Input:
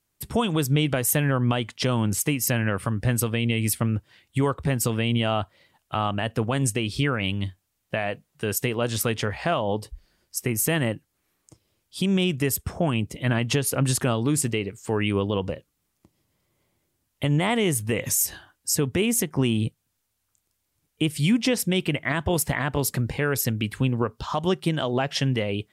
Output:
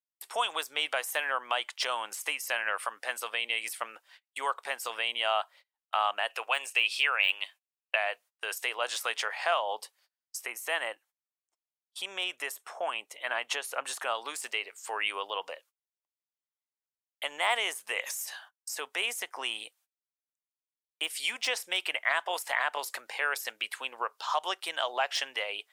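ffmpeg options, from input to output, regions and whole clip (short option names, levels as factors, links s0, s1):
-filter_complex "[0:a]asettb=1/sr,asplit=3[s0][s1][s2];[s0]atrim=end=6.294[s3];[s1]atrim=start=6.29:end=7.96,asetpts=PTS-STARTPTS,afade=t=in:d=0.004:c=qsin,afade=t=out:st=1.666:d=0.004:c=qsin,deesser=0.7,highpass=390,equalizer=f=2600:w=4.3:g=11.5[s4];[s2]atrim=start=7.956[s5];[s3][s4]acrossfade=d=0.004:c1=hsin:c2=qsin[s6];[s6][s5]acrossfade=d=0.004:c1=qsin:c2=hsin,asettb=1/sr,asplit=3[s7][s8][s9];[s7]atrim=end=10.464[s10];[s8]atrim=start=10.46:end=14.15,asetpts=PTS-STARTPTS,afade=t=in:d=0.004:c=qsin,afade=t=out:st=3.686:d=0.004:c=qsin,highshelf=f=2500:g=-5.5,bandreject=f=4900:w=12[s11];[s9]atrim=start=14.146[s12];[s10][s11]acrossfade=d=0.004:c1=hsin:c2=qsin[s13];[s13][s12]acrossfade=d=0.004:c1=qsin:c2=hsin,agate=range=0.0316:threshold=0.00447:ratio=16:detection=peak,deesser=0.6,highpass=f=700:w=0.5412,highpass=f=700:w=1.3066"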